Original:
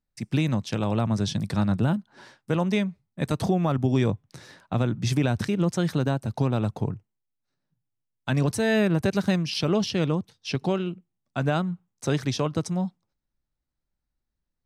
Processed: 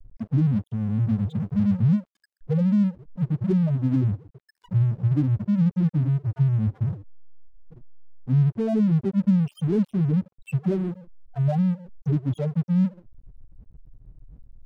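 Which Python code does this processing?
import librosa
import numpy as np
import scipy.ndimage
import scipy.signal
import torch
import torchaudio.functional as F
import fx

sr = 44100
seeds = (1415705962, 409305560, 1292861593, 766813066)

p1 = fx.delta_mod(x, sr, bps=32000, step_db=-35.0)
p2 = fx.rider(p1, sr, range_db=3, speed_s=0.5)
p3 = p1 + (p2 * 10.0 ** (2.5 / 20.0))
p4 = fx.spec_topn(p3, sr, count=2)
y = np.sign(p4) * np.maximum(np.abs(p4) - 10.0 ** (-38.5 / 20.0), 0.0)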